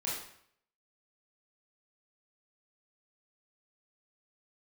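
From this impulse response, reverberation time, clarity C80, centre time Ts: 0.65 s, 5.5 dB, 54 ms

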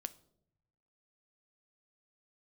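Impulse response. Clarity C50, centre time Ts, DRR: 19.0 dB, 2 ms, 12.0 dB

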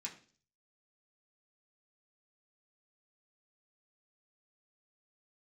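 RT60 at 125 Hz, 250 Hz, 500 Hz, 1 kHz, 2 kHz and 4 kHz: 0.70 s, 0.55 s, 0.50 s, 0.35 s, 0.40 s, 0.50 s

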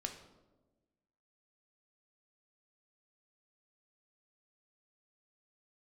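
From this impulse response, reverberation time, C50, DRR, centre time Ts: 1.2 s, 8.5 dB, 3.5 dB, 20 ms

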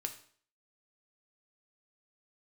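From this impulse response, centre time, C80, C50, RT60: 9 ms, 15.5 dB, 11.5 dB, 0.50 s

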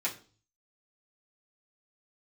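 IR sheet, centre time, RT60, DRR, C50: 15 ms, 0.40 s, -7.5 dB, 13.0 dB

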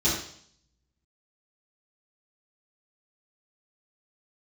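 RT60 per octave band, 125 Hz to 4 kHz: 0.95 s, 0.65 s, 0.60 s, 0.60 s, 0.60 s, 0.70 s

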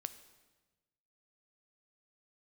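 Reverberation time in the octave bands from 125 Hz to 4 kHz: 1.6 s, 1.4 s, 1.3 s, 1.1 s, 1.1 s, 1.1 s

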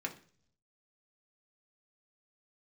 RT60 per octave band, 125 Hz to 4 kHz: 1.0 s, 0.70 s, 0.55 s, 0.40 s, 0.45 s, 0.60 s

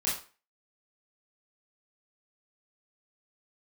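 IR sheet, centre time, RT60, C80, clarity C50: 38 ms, 0.35 s, 11.0 dB, 5.0 dB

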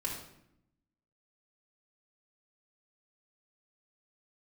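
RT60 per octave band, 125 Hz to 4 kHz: 1.2 s, 1.2 s, 0.80 s, 0.70 s, 0.70 s, 0.55 s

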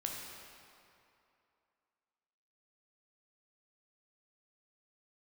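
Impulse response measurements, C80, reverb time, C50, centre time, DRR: 2.0 dB, 2.7 s, 1.0 dB, 106 ms, -1.0 dB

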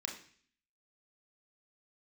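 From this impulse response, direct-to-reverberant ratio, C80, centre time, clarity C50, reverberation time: 0.5 dB, 11.5 dB, 24 ms, 7.5 dB, 0.50 s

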